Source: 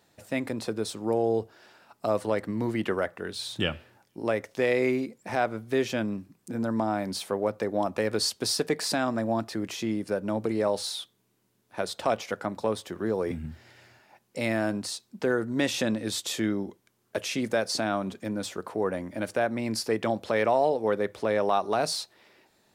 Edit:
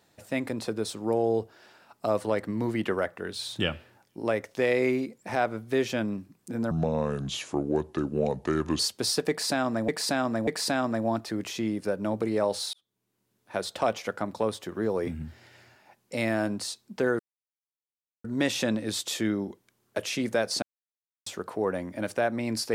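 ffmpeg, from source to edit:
ffmpeg -i in.wav -filter_complex "[0:a]asplit=9[link_01][link_02][link_03][link_04][link_05][link_06][link_07][link_08][link_09];[link_01]atrim=end=6.714[link_10];[link_02]atrim=start=6.71:end=8.21,asetpts=PTS-STARTPTS,asetrate=31752,aresample=44100[link_11];[link_03]atrim=start=8.206:end=9.302[link_12];[link_04]atrim=start=8.708:end=9.302[link_13];[link_05]atrim=start=8.708:end=10.97,asetpts=PTS-STARTPTS,afade=type=out:start_time=2.258:duration=0.004:curve=hsin[link_14];[link_06]atrim=start=10.97:end=15.43,asetpts=PTS-STARTPTS,afade=type=in:duration=0.84,afade=type=out:start_time=4.456:duration=0.004:curve=hsin,apad=pad_dur=1.05[link_15];[link_07]atrim=start=15.43:end=17.81,asetpts=PTS-STARTPTS,afade=type=in:duration=0.004:curve=hsin,afade=type=out:start_time=2.376:duration=0.004:curve=hsin[link_16];[link_08]atrim=start=17.81:end=18.45,asetpts=PTS-STARTPTS,volume=0[link_17];[link_09]atrim=start=18.45,asetpts=PTS-STARTPTS,afade=type=in:duration=0.004:curve=hsin[link_18];[link_10][link_11]acrossfade=duration=0.004:curve1=hsin:curve2=hsin[link_19];[link_19][link_12]acrossfade=duration=0.004:curve1=hsin:curve2=hsin[link_20];[link_20][link_13]acrossfade=duration=0.004:curve1=hsin:curve2=hsin[link_21];[link_14][link_15][link_16][link_17][link_18]concat=n=5:v=0:a=1[link_22];[link_21][link_22]acrossfade=duration=0.004:curve1=hsin:curve2=hsin" out.wav

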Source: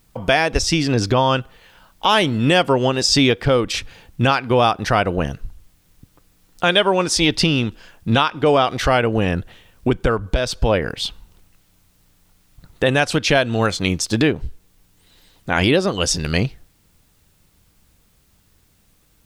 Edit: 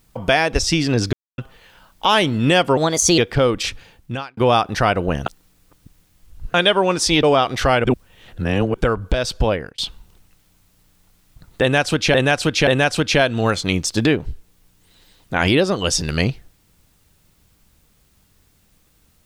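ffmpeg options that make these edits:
ffmpeg -i in.wav -filter_complex "[0:a]asplit=14[link_01][link_02][link_03][link_04][link_05][link_06][link_07][link_08][link_09][link_10][link_11][link_12][link_13][link_14];[link_01]atrim=end=1.13,asetpts=PTS-STARTPTS,afade=type=out:start_time=1.126:duration=0.004:curve=hsin[link_15];[link_02]atrim=start=1.13:end=1.38,asetpts=PTS-STARTPTS,volume=0[link_16];[link_03]atrim=start=1.38:end=2.774,asetpts=PTS-STARTPTS,afade=type=in:duration=0.004:curve=hsin[link_17];[link_04]atrim=start=2.77:end=3.28,asetpts=PTS-STARTPTS,asetrate=54684,aresample=44100[link_18];[link_05]atrim=start=3.276:end=4.47,asetpts=PTS-STARTPTS,afade=type=out:start_time=0.504:duration=0.69[link_19];[link_06]atrim=start=4.47:end=5.362,asetpts=PTS-STARTPTS,afade=type=in:duration=0.004:curve=hsin[link_20];[link_07]atrim=start=5.358:end=6.642,asetpts=PTS-STARTPTS,areverse[link_21];[link_08]atrim=start=6.638:end=7.332[link_22];[link_09]atrim=start=8.448:end=9.062[link_23];[link_10]atrim=start=9.058:end=9.962,asetpts=PTS-STARTPTS,areverse[link_24];[link_11]atrim=start=9.958:end=11,asetpts=PTS-STARTPTS,afade=type=out:start_time=0.692:duration=0.35[link_25];[link_12]atrim=start=11:end=13.362,asetpts=PTS-STARTPTS,afade=type=in:duration=0.004:curve=hsin[link_26];[link_13]atrim=start=12.828:end=13.362[link_27];[link_14]atrim=start=12.828[link_28];[link_15][link_16][link_17]concat=n=3:v=0:a=1[link_29];[link_29][link_18]acrossfade=duration=0.004:curve1=hsin:curve2=hsin[link_30];[link_19][link_20]concat=n=2:v=0:a=1[link_31];[link_30][link_31]acrossfade=duration=0.004:curve1=hsin:curve2=hsin[link_32];[link_32][link_21]acrossfade=duration=0.004:curve1=hsin:curve2=hsin[link_33];[link_33][link_22]acrossfade=duration=0.004:curve1=hsin:curve2=hsin[link_34];[link_34][link_23]acrossfade=duration=0.004:curve1=hsin:curve2=hsin[link_35];[link_35][link_24]acrossfade=duration=0.004:curve1=hsin:curve2=hsin[link_36];[link_25][link_26]concat=n=2:v=0:a=1[link_37];[link_36][link_37]acrossfade=duration=0.004:curve1=hsin:curve2=hsin[link_38];[link_38][link_27]acrossfade=duration=0.004:curve1=hsin:curve2=hsin[link_39];[link_39][link_28]acrossfade=duration=0.004:curve1=hsin:curve2=hsin" out.wav

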